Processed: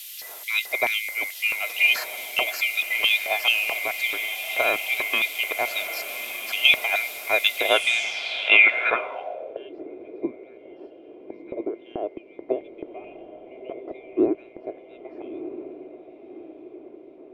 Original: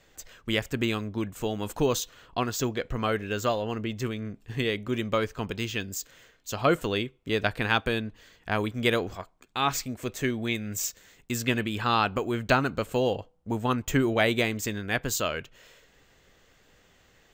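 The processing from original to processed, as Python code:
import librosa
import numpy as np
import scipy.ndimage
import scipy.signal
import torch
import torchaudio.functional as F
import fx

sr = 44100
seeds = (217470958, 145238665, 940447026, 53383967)

y = fx.band_swap(x, sr, width_hz=2000)
y = fx.riaa(y, sr, side='playback')
y = y + 0.48 * np.pad(y, (int(2.9 * sr / 1000.0), 0))[:len(y)]
y = fx.quant_dither(y, sr, seeds[0], bits=8, dither='triangular')
y = fx.filter_lfo_highpass(y, sr, shape='square', hz=2.3, low_hz=560.0, high_hz=3000.0, q=2.5)
y = fx.echo_diffused(y, sr, ms=1252, feedback_pct=52, wet_db=-10)
y = fx.filter_sweep_lowpass(y, sr, from_hz=13000.0, to_hz=350.0, start_s=7.64, end_s=9.7, q=4.1)
y = y * 10.0 ** (4.0 / 20.0)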